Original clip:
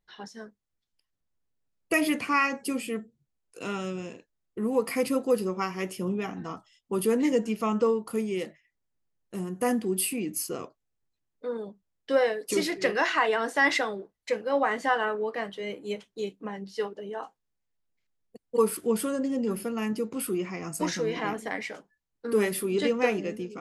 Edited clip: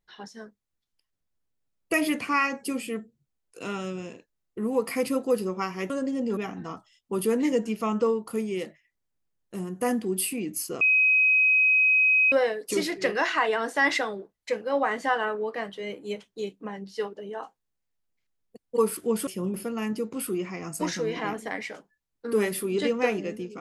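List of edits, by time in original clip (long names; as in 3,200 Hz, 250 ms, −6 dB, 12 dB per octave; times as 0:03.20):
0:05.90–0:06.17: swap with 0:19.07–0:19.54
0:10.61–0:12.12: beep over 2,530 Hz −17 dBFS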